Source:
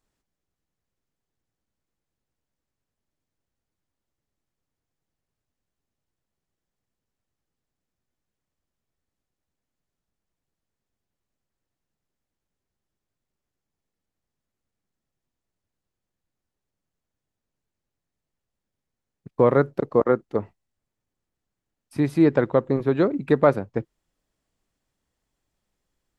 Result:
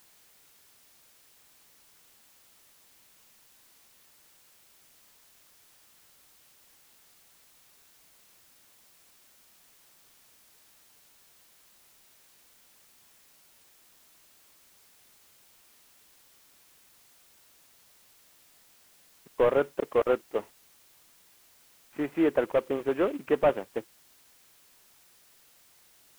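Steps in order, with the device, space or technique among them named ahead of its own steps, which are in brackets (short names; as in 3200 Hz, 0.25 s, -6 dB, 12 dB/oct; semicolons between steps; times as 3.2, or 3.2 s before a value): army field radio (BPF 390–3100 Hz; CVSD 16 kbps; white noise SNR 24 dB); gain -2 dB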